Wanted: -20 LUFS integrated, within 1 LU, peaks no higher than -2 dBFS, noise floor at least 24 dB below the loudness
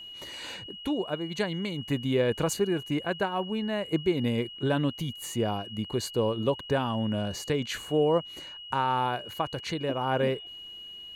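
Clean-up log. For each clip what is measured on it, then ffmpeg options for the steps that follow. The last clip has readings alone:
steady tone 2.9 kHz; tone level -41 dBFS; loudness -29.5 LUFS; peak level -14.5 dBFS; loudness target -20.0 LUFS
-> -af "bandreject=f=2900:w=30"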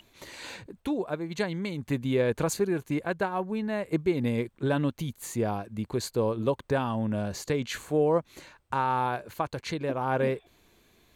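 steady tone not found; loudness -29.5 LUFS; peak level -14.0 dBFS; loudness target -20.0 LUFS
-> -af "volume=2.99"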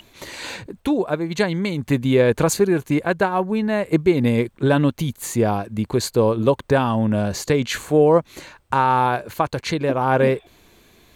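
loudness -20.0 LUFS; peak level -4.5 dBFS; noise floor -54 dBFS

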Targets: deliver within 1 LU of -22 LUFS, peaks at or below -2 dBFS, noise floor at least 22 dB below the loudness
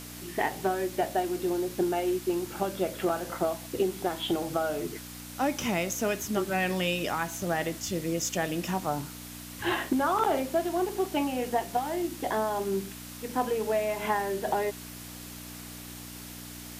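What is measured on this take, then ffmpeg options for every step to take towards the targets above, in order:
hum 60 Hz; highest harmonic 300 Hz; hum level -43 dBFS; noise floor -43 dBFS; noise floor target -52 dBFS; loudness -30.0 LUFS; peak level -14.5 dBFS; loudness target -22.0 LUFS
-> -af "bandreject=f=60:t=h:w=4,bandreject=f=120:t=h:w=4,bandreject=f=180:t=h:w=4,bandreject=f=240:t=h:w=4,bandreject=f=300:t=h:w=4"
-af "afftdn=nr=9:nf=-43"
-af "volume=2.51"

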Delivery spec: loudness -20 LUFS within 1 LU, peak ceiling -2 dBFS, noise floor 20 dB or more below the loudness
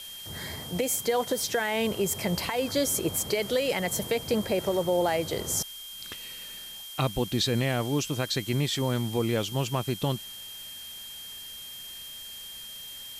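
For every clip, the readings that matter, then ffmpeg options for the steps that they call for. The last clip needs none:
steady tone 3.2 kHz; tone level -41 dBFS; noise floor -42 dBFS; noise floor target -50 dBFS; loudness -29.5 LUFS; peak level -14.5 dBFS; loudness target -20.0 LUFS
-> -af "bandreject=f=3200:w=30"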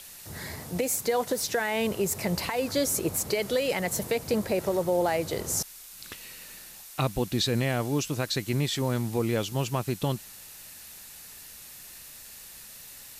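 steady tone not found; noise floor -46 dBFS; noise floor target -48 dBFS
-> -af "afftdn=nr=6:nf=-46"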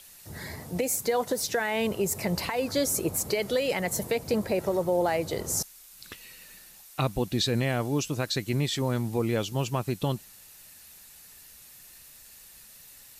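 noise floor -51 dBFS; loudness -28.5 LUFS; peak level -15.0 dBFS; loudness target -20.0 LUFS
-> -af "volume=2.66"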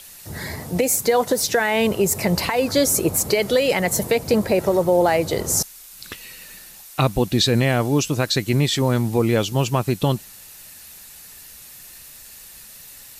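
loudness -20.0 LUFS; peak level -6.5 dBFS; noise floor -43 dBFS

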